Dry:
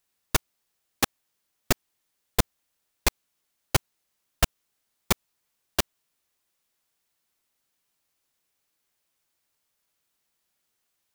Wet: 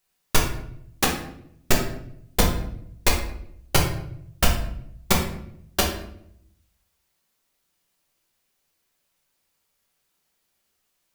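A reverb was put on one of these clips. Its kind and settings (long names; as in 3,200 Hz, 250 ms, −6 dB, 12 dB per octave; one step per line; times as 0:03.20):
rectangular room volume 150 cubic metres, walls mixed, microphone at 1.1 metres
level +1 dB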